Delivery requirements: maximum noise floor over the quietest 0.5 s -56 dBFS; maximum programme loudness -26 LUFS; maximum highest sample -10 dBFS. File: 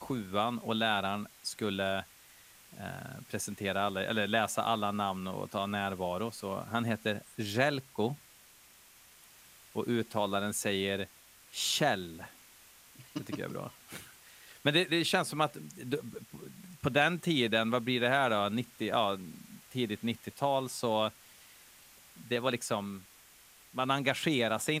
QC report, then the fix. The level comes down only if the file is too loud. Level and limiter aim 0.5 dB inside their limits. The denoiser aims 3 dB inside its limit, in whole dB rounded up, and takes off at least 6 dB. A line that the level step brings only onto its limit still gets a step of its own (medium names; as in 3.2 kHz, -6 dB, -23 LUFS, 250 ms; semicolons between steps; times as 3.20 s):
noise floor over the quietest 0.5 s -59 dBFS: pass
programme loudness -32.5 LUFS: pass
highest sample -11.5 dBFS: pass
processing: none needed